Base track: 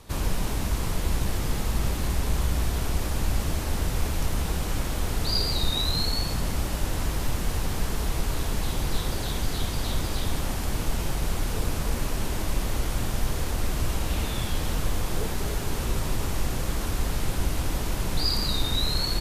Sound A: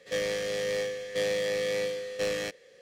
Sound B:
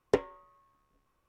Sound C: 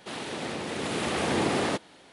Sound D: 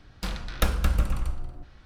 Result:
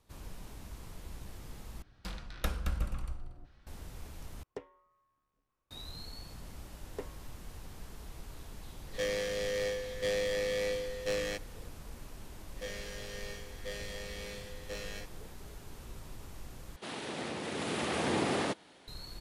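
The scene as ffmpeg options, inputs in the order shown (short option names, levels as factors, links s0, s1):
-filter_complex "[2:a]asplit=2[s0][s1];[1:a]asplit=2[s2][s3];[0:a]volume=0.1[s4];[4:a]aresample=32000,aresample=44100[s5];[s0]alimiter=limit=0.1:level=0:latency=1:release=392[s6];[s1]alimiter=limit=0.158:level=0:latency=1:release=71[s7];[s3]aecho=1:1:44|58:0.531|0.398[s8];[s4]asplit=4[s9][s10][s11][s12];[s9]atrim=end=1.824[s13];[s5]atrim=end=1.85,asetpts=PTS-STARTPTS,volume=0.316[s14];[s10]atrim=start=3.666:end=4.434[s15];[s6]atrim=end=1.28,asetpts=PTS-STARTPTS,volume=0.316[s16];[s11]atrim=start=5.706:end=16.764[s17];[3:a]atrim=end=2.12,asetpts=PTS-STARTPTS,volume=0.562[s18];[s12]atrim=start=18.876[s19];[s7]atrim=end=1.28,asetpts=PTS-STARTPTS,volume=0.237,afade=t=in:d=0.004:c=hsin,afade=t=out:st=1.276:d=0.004:c=hsin,adelay=6850[s20];[s2]atrim=end=2.81,asetpts=PTS-STARTPTS,volume=0.668,afade=t=in:d=0.004:c=hsin,afade=t=out:st=2.806:d=0.004:c=hsin,adelay=8870[s21];[s8]atrim=end=2.81,asetpts=PTS-STARTPTS,volume=0.299,afade=t=in:d=0.004:c=hsin,afade=t=out:st=2.806:d=0.004:c=hsin,adelay=12500[s22];[s13][s14]acrossfade=d=0.004:c1=hsin:c2=hsin[s23];[s23][s15]acrossfade=d=0.004:c1=hsin:c2=hsin[s24];[s24][s16]acrossfade=d=0.004:c1=hsin:c2=hsin[s25];[s25][s17]acrossfade=d=0.004:c1=hsin:c2=hsin[s26];[s26][s18]acrossfade=d=0.004:c1=hsin:c2=hsin[s27];[s27][s19]acrossfade=d=0.004:c1=hsin:c2=hsin[s28];[s28][s20][s21][s22]amix=inputs=4:normalize=0"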